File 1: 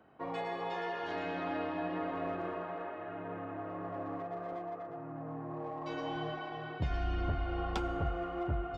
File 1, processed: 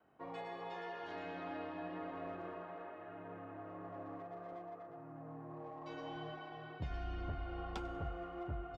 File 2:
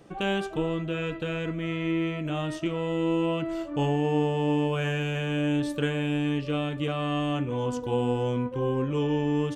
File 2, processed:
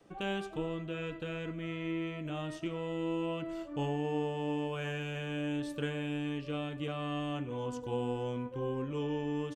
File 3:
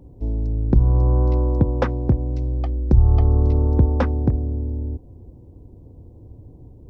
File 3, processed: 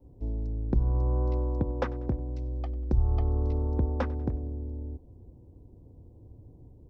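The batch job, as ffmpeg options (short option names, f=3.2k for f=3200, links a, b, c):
-filter_complex "[0:a]adynamicequalizer=threshold=0.0251:dfrequency=120:dqfactor=0.79:tfrequency=120:tqfactor=0.79:attack=5:release=100:ratio=0.375:range=3:mode=cutabove:tftype=bell,asplit=2[a][b];[b]aecho=0:1:96|192|288:0.0794|0.0381|0.0183[c];[a][c]amix=inputs=2:normalize=0,volume=-8dB"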